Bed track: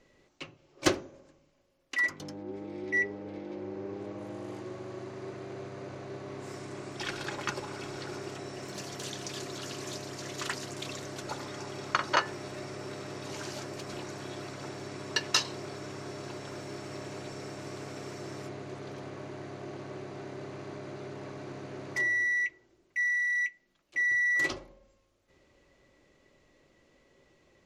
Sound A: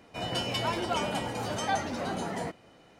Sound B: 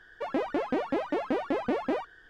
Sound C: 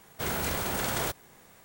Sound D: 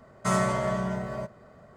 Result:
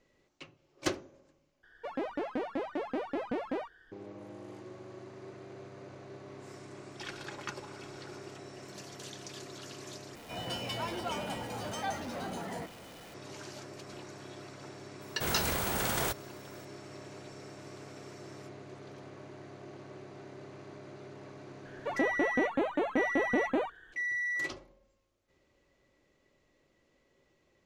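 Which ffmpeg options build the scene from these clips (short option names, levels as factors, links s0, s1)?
-filter_complex "[2:a]asplit=2[s0][s1];[0:a]volume=0.473[s2];[1:a]aeval=exprs='val(0)+0.5*0.0126*sgn(val(0))':c=same[s3];[s1]asuperstop=centerf=5100:order=4:qfactor=2.6[s4];[s2]asplit=3[s5][s6][s7];[s5]atrim=end=1.634[s8];[s0]atrim=end=2.29,asetpts=PTS-STARTPTS,volume=0.501[s9];[s6]atrim=start=3.916:end=10.154[s10];[s3]atrim=end=2.99,asetpts=PTS-STARTPTS,volume=0.422[s11];[s7]atrim=start=13.136[s12];[3:a]atrim=end=1.64,asetpts=PTS-STARTPTS,volume=0.841,afade=t=in:d=0.004:c=hsin,afade=t=out:st=1.636:d=0.004:c=hsin,adelay=15010[s13];[s4]atrim=end=2.29,asetpts=PTS-STARTPTS,volume=0.891,afade=t=in:d=0.004:c=hsin,afade=t=out:st=2.286:d=0.004:c=hsin,adelay=21650[s14];[s8][s9]acrossfade=d=0.004:c1=hsin:c2=hsin[s15];[s15][s10]acrossfade=d=0.004:c1=hsin:c2=hsin[s16];[s16][s11]acrossfade=d=0.004:c1=hsin:c2=hsin[s17];[s17][s12]acrossfade=d=0.004:c1=hsin:c2=hsin[s18];[s18][s13][s14]amix=inputs=3:normalize=0"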